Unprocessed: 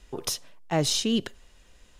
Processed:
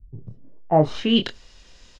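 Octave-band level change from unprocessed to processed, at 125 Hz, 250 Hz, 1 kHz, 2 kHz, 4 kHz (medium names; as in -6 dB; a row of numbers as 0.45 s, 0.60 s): +6.0 dB, +6.0 dB, +10.0 dB, +3.0 dB, +2.0 dB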